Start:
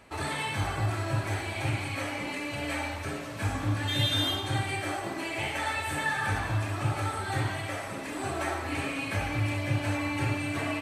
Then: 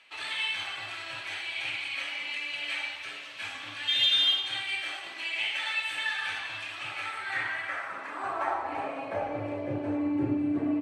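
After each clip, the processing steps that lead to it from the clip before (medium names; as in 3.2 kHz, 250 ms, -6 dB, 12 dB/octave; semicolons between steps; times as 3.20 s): Chebyshev shaper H 5 -15 dB, 7 -19 dB, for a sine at -14 dBFS; band-pass sweep 3 kHz -> 300 Hz, 6.77–10.29 s; trim +6 dB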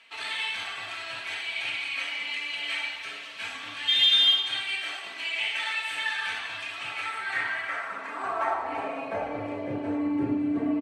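comb 4.4 ms, depth 43%; trim +1.5 dB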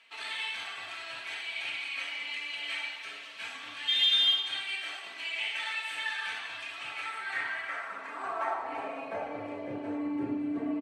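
high-pass 170 Hz 6 dB/octave; trim -4.5 dB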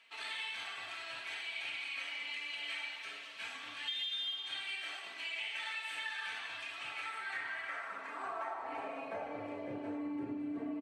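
compression 6:1, threshold -33 dBFS, peak gain reduction 11.5 dB; trim -3.5 dB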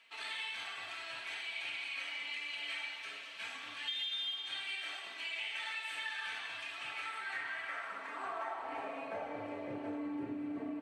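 echo that smears into a reverb 745 ms, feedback 58%, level -16 dB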